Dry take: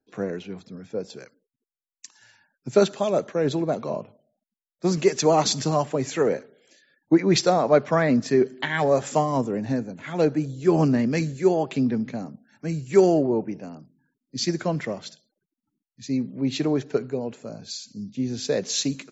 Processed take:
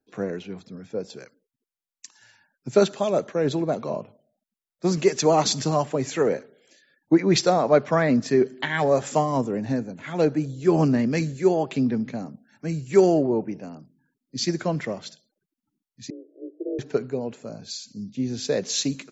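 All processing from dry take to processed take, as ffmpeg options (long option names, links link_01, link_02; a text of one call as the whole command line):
ffmpeg -i in.wav -filter_complex "[0:a]asettb=1/sr,asplit=3[link_01][link_02][link_03];[link_01]atrim=end=16.104[link_04];[link_02]atrim=start=16.1:end=16.79,asetpts=PTS-STARTPTS,afade=type=in:duration=0.004:curve=qsin,afade=type=out:start_time=0.686:duration=0.004:curve=qsin,afreqshift=-70,aeval=exprs='val(0)*sin(2*PI*100*n/s)':channel_layout=same,asuperpass=centerf=450:order=12:qfactor=1.4[link_05];[link_03]atrim=start=16.786[link_06];[link_04][link_05]acrossfade=duration=0.004:curve1=hsin:curve2=qsin[link_07];[link_07][link_06]acrossfade=duration=0.004:curve1=qsin:curve2=hsin" out.wav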